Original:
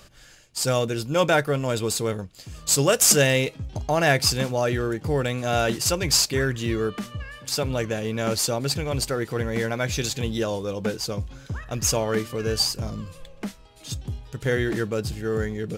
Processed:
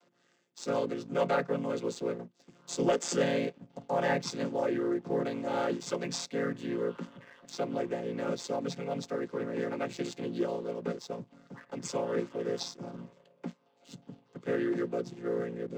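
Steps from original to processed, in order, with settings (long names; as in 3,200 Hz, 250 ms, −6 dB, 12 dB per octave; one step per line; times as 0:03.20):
channel vocoder with a chord as carrier minor triad, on A#2
high-pass filter 230 Hz 24 dB per octave
leveller curve on the samples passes 1
level −6.5 dB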